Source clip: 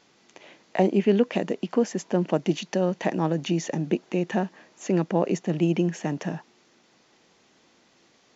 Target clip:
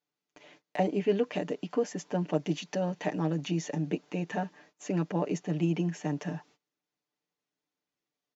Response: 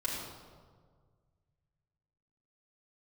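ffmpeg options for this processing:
-af "agate=range=-24dB:threshold=-52dB:ratio=16:detection=peak,aecho=1:1:6.8:0.74,volume=-7.5dB"

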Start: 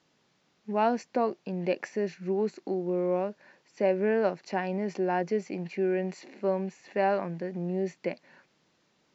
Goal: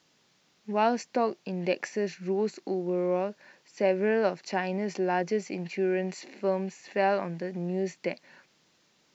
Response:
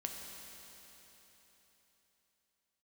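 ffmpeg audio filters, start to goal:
-af "highshelf=frequency=2500:gain=8"

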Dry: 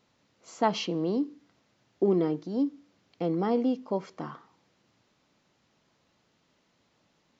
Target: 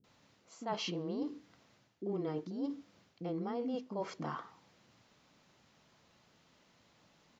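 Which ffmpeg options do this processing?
ffmpeg -i in.wav -filter_complex "[0:a]acrossover=split=340[link_01][link_02];[link_02]adelay=40[link_03];[link_01][link_03]amix=inputs=2:normalize=0,areverse,acompressor=threshold=-39dB:ratio=5,areverse,volume=3dB" out.wav

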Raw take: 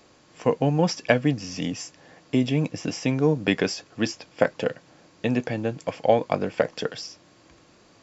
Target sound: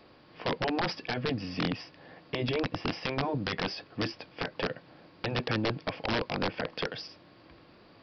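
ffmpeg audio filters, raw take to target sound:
ffmpeg -i in.wav -af "afftfilt=real='re*lt(hypot(re,im),0.501)':imag='im*lt(hypot(re,im),0.501)':win_size=1024:overlap=0.75,alimiter=limit=-16dB:level=0:latency=1:release=117,aresample=11025,aeval=exprs='(mod(11.2*val(0)+1,2)-1)/11.2':channel_layout=same,aresample=44100,highshelf=frequency=4100:gain=-4.5" out.wav

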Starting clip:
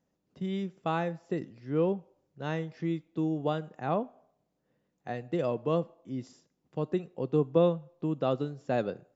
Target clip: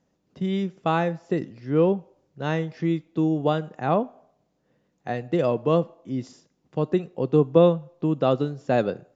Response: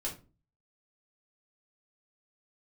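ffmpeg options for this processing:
-af "aresample=16000,aresample=44100,volume=7.5dB"

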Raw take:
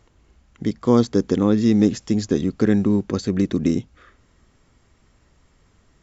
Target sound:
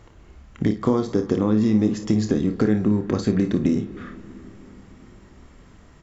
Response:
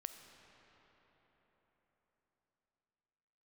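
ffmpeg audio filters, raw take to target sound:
-filter_complex "[0:a]acompressor=threshold=-26dB:ratio=5,aecho=1:1:28|56:0.355|0.282,asplit=2[link_01][link_02];[1:a]atrim=start_sample=2205,lowpass=3300[link_03];[link_02][link_03]afir=irnorm=-1:irlink=0,volume=0dB[link_04];[link_01][link_04]amix=inputs=2:normalize=0,volume=4dB"

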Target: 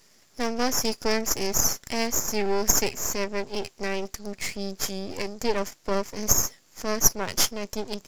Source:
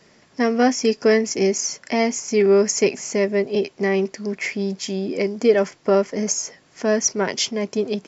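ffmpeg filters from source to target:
ffmpeg -i in.wav -af "crystalizer=i=2:c=0,aemphasis=mode=production:type=cd,aeval=exprs='max(val(0),0)':channel_layout=same,volume=-6dB" out.wav

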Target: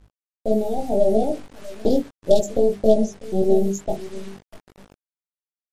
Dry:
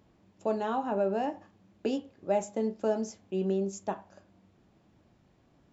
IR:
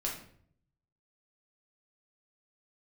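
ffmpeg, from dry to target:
-filter_complex "[0:a]asettb=1/sr,asplit=3[link_01][link_02][link_03];[link_01]atrim=end=1.234[link_04];[link_02]atrim=start=1.23:end=3.54,asetpts=PTS-STARTPTS,afade=type=in:duration=0.004:curve=qsin,afade=type=out:start_time=2.306:duration=0.004:curve=qsin,adynamicequalizer=threshold=0.0141:dfrequency=600:dqfactor=1.2:tfrequency=600:tqfactor=1.2:attack=5:release=100:ratio=0.375:range=2:mode=boostabove:tftype=bell[link_05];[link_03]atrim=start=3.536[link_06];[link_04][link_05]acrossfade=duration=0.004:curve1=hsin:curve2=qsin[link_07];[link_07][link_06]acrossfade=duration=0.004:curve1=qsin:curve2=hsin,aeval=exprs='0.158*(cos(1*acos(clip(val(0)/0.158,-1,1)))-cos(1*PI/2))+0.0447*(cos(4*acos(clip(val(0)/0.158,-1,1)))-cos(4*PI/2))+0.00562*(cos(5*acos(clip(val(0)/0.158,-1,1)))-cos(5*PI/2))':channel_layout=same,agate=range=-11dB:threshold=-49dB:ratio=16:detection=peak,aeval=exprs='val(0)+0.00708*(sin(2*PI*50*n/s)+sin(2*PI*2*50*n/s)/2+sin(2*PI*3*50*n/s)/3+sin(2*PI*4*50*n/s)/4+sin(2*PI*5*50*n/s)/5)':channel_layout=same,asuperstop=centerf=1600:order=12:qfactor=0.57,asplit=2[link_08][link_09];[link_09]adelay=646,lowpass=frequency=990:poles=1,volume=-16dB,asplit=2[link_10][link_11];[link_11]adelay=646,lowpass=frequency=990:poles=1,volume=0.26,asplit=2[link_12][link_13];[link_13]adelay=646,lowpass=frequency=990:poles=1,volume=0.26[link_14];[link_08][link_10][link_12][link_14]amix=inputs=4:normalize=0,anlmdn=1,bandreject=frequency=50:width_type=h:width=6,bandreject=frequency=100:width_type=h:width=6,bandreject=frequency=150:width_type=h:width=6,bandreject=frequency=200:width_type=h:width=6,bandreject=frequency=250:width_type=h:width=6,bandreject=frequency=300:width_type=h:width=6,bandreject=frequency=350:width_type=h:width=6,bandreject=frequency=400:width_type=h:width=6,acrusher=bits=8:mix=0:aa=0.000001,flanger=delay=18.5:depth=2.3:speed=1.7,dynaudnorm=framelen=120:gausssize=7:maxgain=14.5dB" -ar 44100 -c:a libmp3lame -b:a 56k

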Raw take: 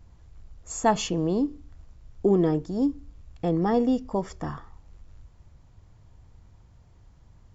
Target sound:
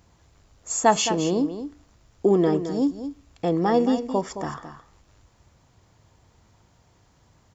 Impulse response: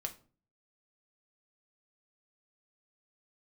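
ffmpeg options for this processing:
-af "highpass=frequency=280:poles=1,highshelf=frequency=4700:gain=5,aecho=1:1:217:0.299,volume=4.5dB"

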